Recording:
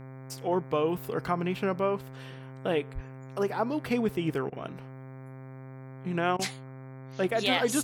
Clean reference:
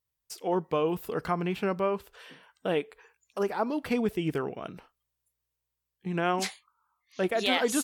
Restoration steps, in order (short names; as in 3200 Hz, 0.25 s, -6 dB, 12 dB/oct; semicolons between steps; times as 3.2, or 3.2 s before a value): de-hum 131.8 Hz, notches 18; 2.94–3.06 HPF 140 Hz 24 dB/oct; interpolate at 4.5/6.37, 20 ms